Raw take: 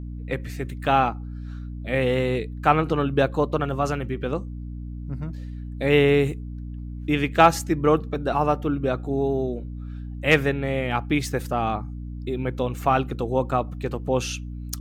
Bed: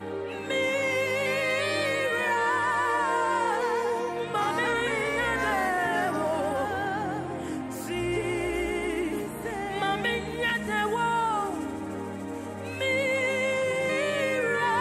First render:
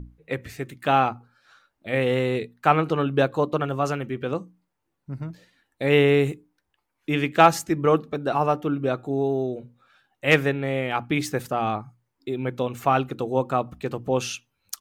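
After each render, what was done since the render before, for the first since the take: hum notches 60/120/180/240/300 Hz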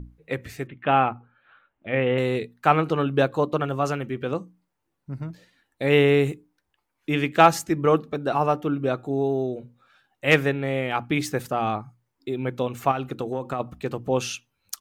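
0.67–2.18 s: steep low-pass 3.2 kHz 48 dB/octave; 12.91–13.60 s: compression 10:1, threshold -22 dBFS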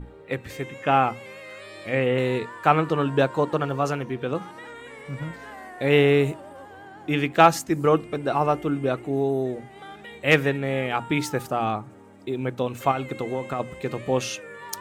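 add bed -14.5 dB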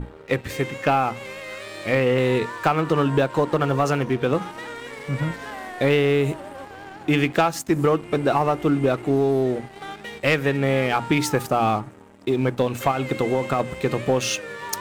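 compression 12:1, threshold -22 dBFS, peak gain reduction 14 dB; waveshaping leveller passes 2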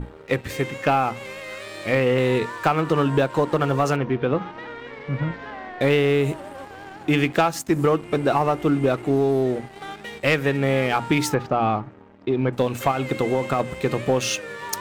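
3.96–5.81 s: distance through air 220 m; 11.34–12.53 s: distance through air 220 m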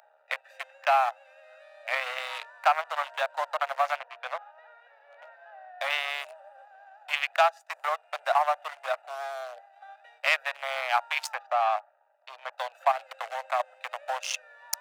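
local Wiener filter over 41 samples; steep high-pass 630 Hz 72 dB/octave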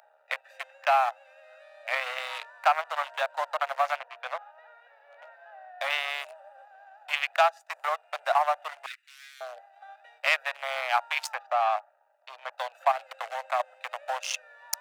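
8.86–9.41 s: elliptic high-pass 1.9 kHz, stop band 80 dB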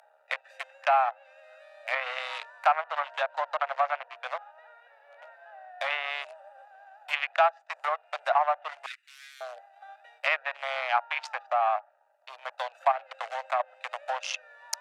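low-pass that closes with the level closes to 2.3 kHz, closed at -24 dBFS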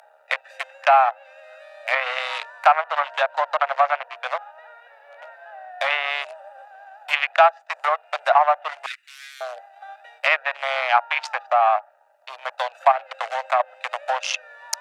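trim +8 dB; peak limiter -3 dBFS, peak gain reduction 2 dB

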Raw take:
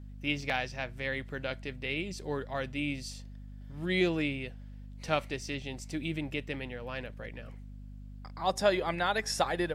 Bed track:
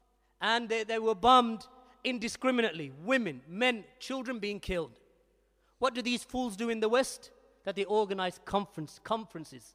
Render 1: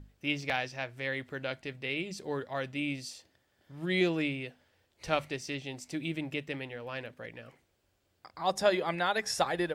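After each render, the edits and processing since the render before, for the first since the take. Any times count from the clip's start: hum notches 50/100/150/200/250 Hz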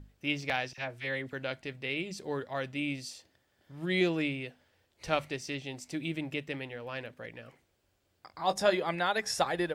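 0.73–1.33 s: phase dispersion lows, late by 49 ms, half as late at 1.3 kHz; 8.29–8.74 s: doubling 20 ms -10 dB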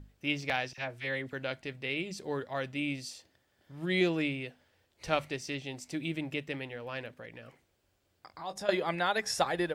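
7.19–8.69 s: compression 2:1, threshold -43 dBFS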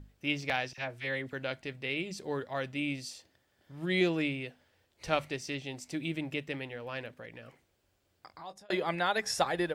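8.27–8.70 s: fade out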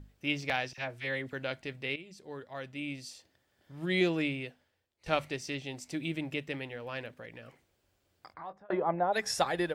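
1.96–3.78 s: fade in, from -13.5 dB; 4.44–5.06 s: fade out quadratic, to -15.5 dB; 8.33–9.12 s: resonant low-pass 2 kHz -> 640 Hz, resonance Q 1.8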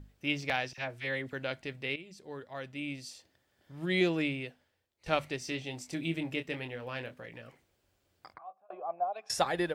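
5.39–7.42 s: doubling 24 ms -8 dB; 8.38–9.30 s: vowel filter a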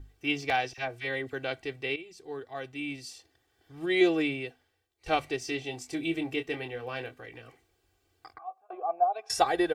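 comb 2.6 ms, depth 82%; dynamic bell 590 Hz, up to +5 dB, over -45 dBFS, Q 1.8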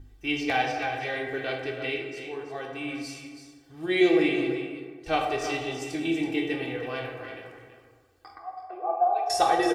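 delay 327 ms -10 dB; plate-style reverb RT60 1.6 s, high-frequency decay 0.45×, DRR 0.5 dB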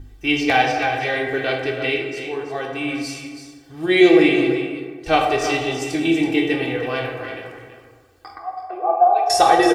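trim +9 dB; peak limiter -2 dBFS, peak gain reduction 2 dB

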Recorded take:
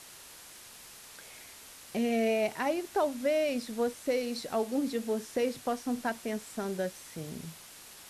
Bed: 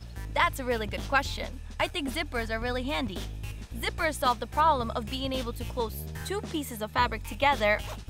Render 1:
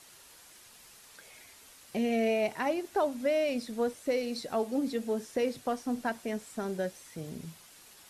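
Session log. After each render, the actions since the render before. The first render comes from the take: noise reduction 6 dB, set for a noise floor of -51 dBFS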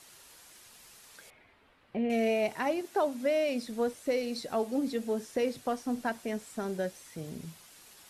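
1.30–2.10 s: distance through air 490 m; 2.81–3.67 s: high-pass 110 Hz 24 dB/octave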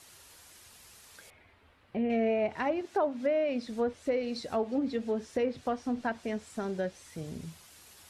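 low-pass that closes with the level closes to 2 kHz, closed at -24.5 dBFS; peaking EQ 80 Hz +13.5 dB 0.54 oct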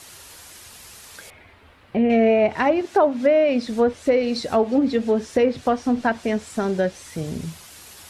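trim +11.5 dB

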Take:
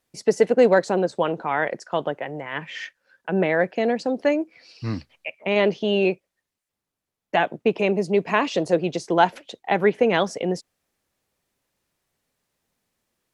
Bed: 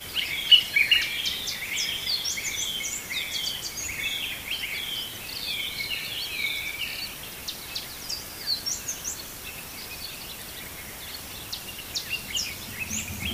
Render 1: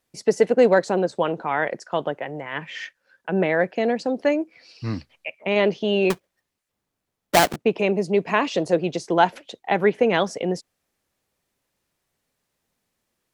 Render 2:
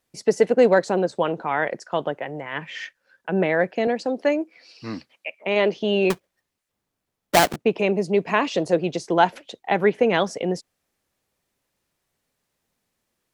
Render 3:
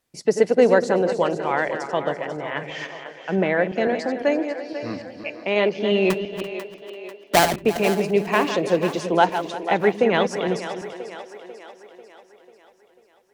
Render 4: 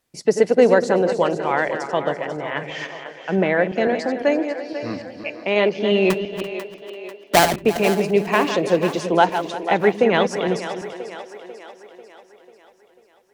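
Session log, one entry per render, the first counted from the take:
6.10–7.56 s: square wave that keeps the level
3.87–5.77 s: high-pass 220 Hz
backward echo that repeats 169 ms, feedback 43%, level -9.5 dB; two-band feedback delay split 300 Hz, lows 110 ms, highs 493 ms, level -11.5 dB
trim +2 dB; peak limiter -3 dBFS, peak gain reduction 1.5 dB

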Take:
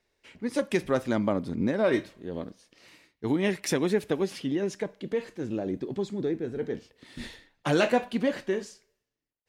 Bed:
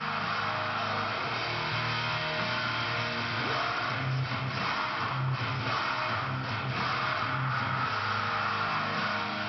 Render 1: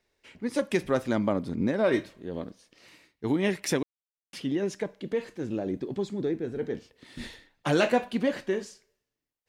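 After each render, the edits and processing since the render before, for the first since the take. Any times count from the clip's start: 3.83–4.33 s: mute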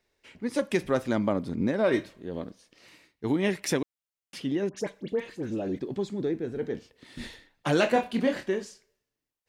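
4.69–5.79 s: phase dispersion highs, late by 80 ms, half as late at 1.8 kHz; 7.93–8.49 s: doubling 27 ms -5 dB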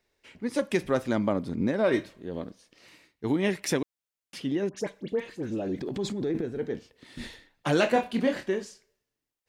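5.78–6.42 s: transient shaper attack -3 dB, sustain +10 dB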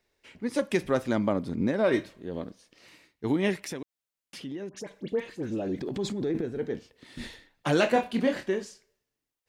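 3.60–4.91 s: compression 2:1, threshold -40 dBFS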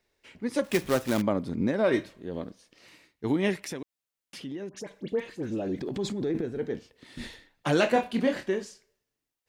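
0.64–1.22 s: companded quantiser 4-bit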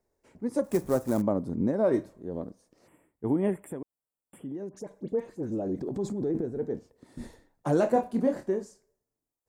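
2.87–4.54 s: time-frequency box 3.5–7.3 kHz -30 dB; FFT filter 670 Hz 0 dB, 950 Hz -2 dB, 3 kHz -21 dB, 7.5 kHz -4 dB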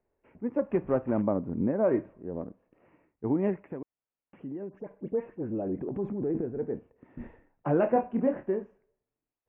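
elliptic low-pass 2.7 kHz, stop band 40 dB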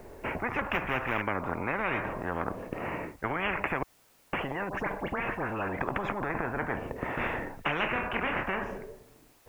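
in parallel at -1 dB: compression, threshold -35 dBFS, peak gain reduction 15 dB; on the sum: spectrum-flattening compressor 10:1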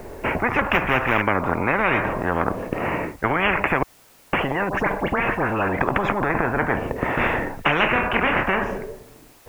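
trim +10.5 dB; peak limiter -3 dBFS, peak gain reduction 1.5 dB

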